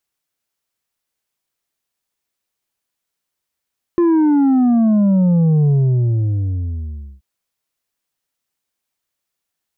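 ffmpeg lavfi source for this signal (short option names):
-f lavfi -i "aevalsrc='0.282*clip((3.23-t)/1.53,0,1)*tanh(1.78*sin(2*PI*350*3.23/log(65/350)*(exp(log(65/350)*t/3.23)-1)))/tanh(1.78)':d=3.23:s=44100"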